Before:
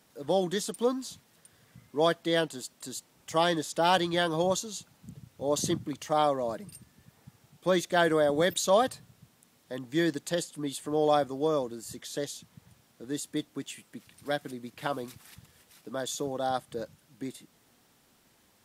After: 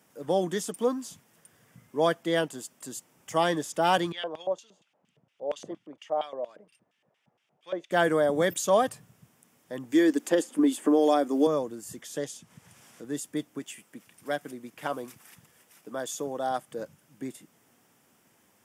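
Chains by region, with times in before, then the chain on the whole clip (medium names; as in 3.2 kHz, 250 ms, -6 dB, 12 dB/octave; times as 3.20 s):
4.12–7.91 s: treble shelf 9.6 kHz -8 dB + LFO band-pass square 4.3 Hz 600–3000 Hz
9.92–11.47 s: resonant low shelf 190 Hz -11 dB, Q 3 + three bands compressed up and down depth 100%
12.18–13.04 s: low-pass 11 kHz + upward compressor, threshold -53 dBFS + tape noise reduction on one side only encoder only
13.59–16.82 s: bass shelf 130 Hz -9.5 dB + overload inside the chain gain 20 dB
whole clip: high-pass 110 Hz; peaking EQ 4.1 kHz -12 dB 0.39 oct; trim +1 dB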